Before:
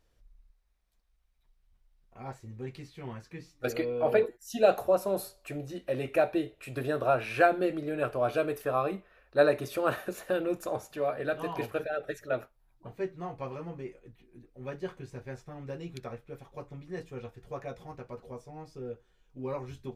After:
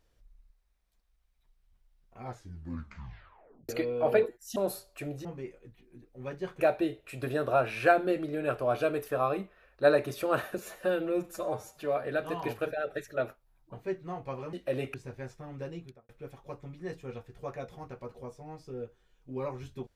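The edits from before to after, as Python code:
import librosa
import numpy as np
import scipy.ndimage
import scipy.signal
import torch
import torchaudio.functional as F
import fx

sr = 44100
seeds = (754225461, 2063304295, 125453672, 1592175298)

y = fx.studio_fade_out(x, sr, start_s=15.76, length_s=0.41)
y = fx.edit(y, sr, fx.tape_stop(start_s=2.22, length_s=1.47),
    fx.cut(start_s=4.56, length_s=0.49),
    fx.swap(start_s=5.74, length_s=0.41, other_s=13.66, other_length_s=1.36),
    fx.stretch_span(start_s=10.12, length_s=0.82, factor=1.5), tone=tone)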